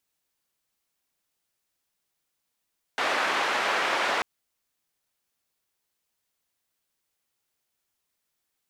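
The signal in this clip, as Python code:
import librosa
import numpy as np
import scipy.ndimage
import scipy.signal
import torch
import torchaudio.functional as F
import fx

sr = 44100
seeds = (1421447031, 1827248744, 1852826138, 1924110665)

y = fx.band_noise(sr, seeds[0], length_s=1.24, low_hz=490.0, high_hz=1800.0, level_db=-26.0)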